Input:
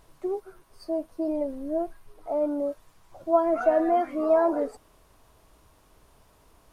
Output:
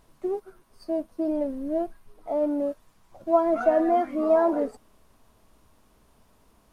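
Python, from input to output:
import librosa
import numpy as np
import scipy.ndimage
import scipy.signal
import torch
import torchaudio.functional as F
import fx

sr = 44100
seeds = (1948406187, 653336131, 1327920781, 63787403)

p1 = fx.peak_eq(x, sr, hz=220.0, db=9.5, octaves=0.42)
p2 = fx.backlash(p1, sr, play_db=-37.5)
p3 = p1 + F.gain(torch.from_numpy(p2), -6.0).numpy()
y = F.gain(torch.from_numpy(p3), -3.0).numpy()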